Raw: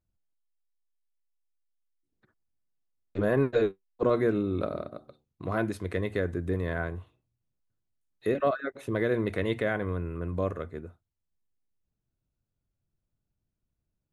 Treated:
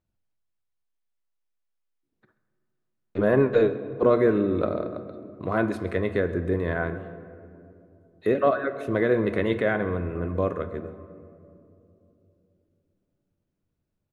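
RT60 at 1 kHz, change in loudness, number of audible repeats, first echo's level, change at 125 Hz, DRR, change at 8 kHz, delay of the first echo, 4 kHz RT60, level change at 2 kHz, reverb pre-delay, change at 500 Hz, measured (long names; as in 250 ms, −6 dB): 2.4 s, +5.0 dB, 1, −20.5 dB, +2.5 dB, 10.5 dB, can't be measured, 133 ms, 1.3 s, +4.5 dB, 5 ms, +5.5 dB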